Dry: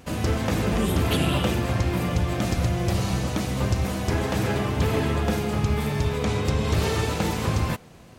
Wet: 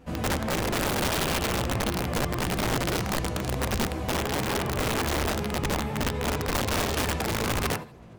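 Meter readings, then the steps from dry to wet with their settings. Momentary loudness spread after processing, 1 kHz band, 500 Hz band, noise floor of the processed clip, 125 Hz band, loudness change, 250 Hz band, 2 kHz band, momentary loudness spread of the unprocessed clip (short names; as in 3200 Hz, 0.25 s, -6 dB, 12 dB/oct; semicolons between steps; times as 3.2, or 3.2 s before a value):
3 LU, +0.5 dB, -2.0 dB, -42 dBFS, -7.0 dB, -2.5 dB, -4.5 dB, +1.0 dB, 3 LU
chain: high shelf 2400 Hz -10.5 dB; thinning echo 78 ms, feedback 36%, high-pass 510 Hz, level -4.5 dB; chorus voices 4, 1.4 Hz, delay 15 ms, depth 3.2 ms; wrapped overs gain 21 dB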